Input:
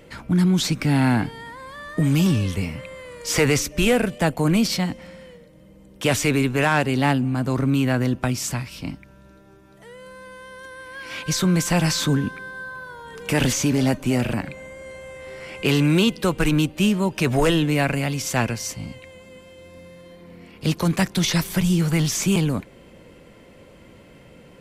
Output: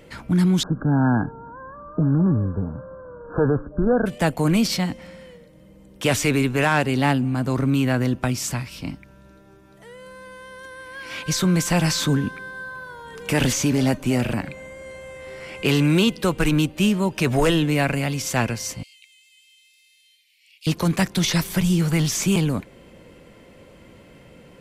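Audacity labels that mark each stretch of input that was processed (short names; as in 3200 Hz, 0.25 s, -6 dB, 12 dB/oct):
0.630000	4.060000	brick-wall FIR low-pass 1700 Hz
18.830000	20.670000	steep high-pass 2400 Hz 48 dB/oct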